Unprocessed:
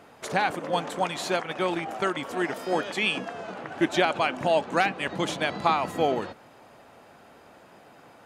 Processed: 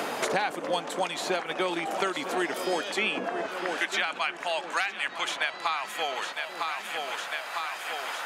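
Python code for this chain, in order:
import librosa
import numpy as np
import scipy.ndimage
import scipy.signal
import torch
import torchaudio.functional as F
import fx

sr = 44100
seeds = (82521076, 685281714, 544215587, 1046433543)

y = fx.highpass(x, sr, hz=fx.steps((0.0, 250.0), (3.46, 1400.0)), slope=12)
y = fx.echo_feedback(y, sr, ms=954, feedback_pct=44, wet_db=-15.0)
y = fx.band_squash(y, sr, depth_pct=100)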